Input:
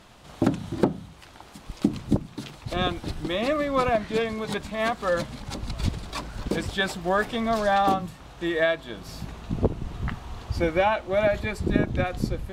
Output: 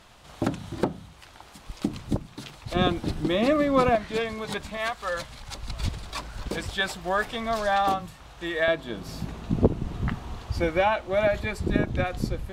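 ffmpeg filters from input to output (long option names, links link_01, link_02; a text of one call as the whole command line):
ffmpeg -i in.wav -af "asetnsamples=nb_out_samples=441:pad=0,asendcmd='2.75 equalizer g 5.5;3.95 equalizer g -4.5;4.77 equalizer g -15;5.68 equalizer g -7;8.68 equalizer g 4.5;10.36 equalizer g -2',equalizer=frequency=240:width_type=o:width=2.2:gain=-5.5" out.wav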